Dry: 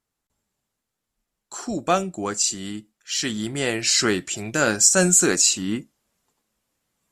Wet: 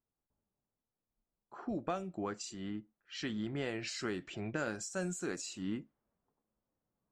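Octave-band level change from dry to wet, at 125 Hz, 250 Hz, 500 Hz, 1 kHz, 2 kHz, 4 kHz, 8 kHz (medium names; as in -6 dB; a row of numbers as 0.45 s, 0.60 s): -13.5 dB, -13.0 dB, -15.5 dB, -16.5 dB, -17.5 dB, -21.5 dB, -27.5 dB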